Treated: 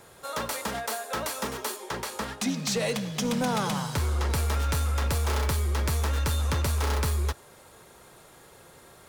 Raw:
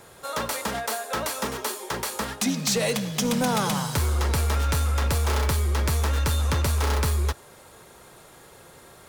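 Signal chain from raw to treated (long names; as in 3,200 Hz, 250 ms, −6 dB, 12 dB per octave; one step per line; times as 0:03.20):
0:01.76–0:04.30: high-shelf EQ 8,600 Hz −7.5 dB
level −3 dB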